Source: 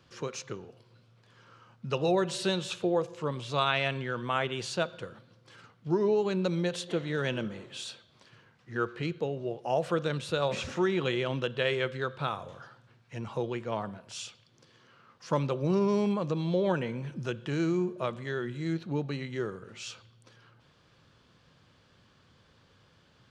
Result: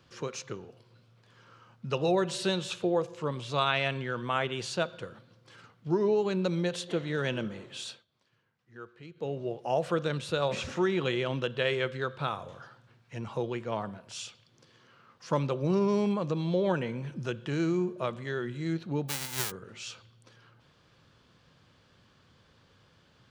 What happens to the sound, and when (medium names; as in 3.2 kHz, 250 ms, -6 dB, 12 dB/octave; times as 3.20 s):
7.90–9.30 s: dip -15 dB, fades 0.15 s
19.08–19.50 s: formants flattened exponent 0.1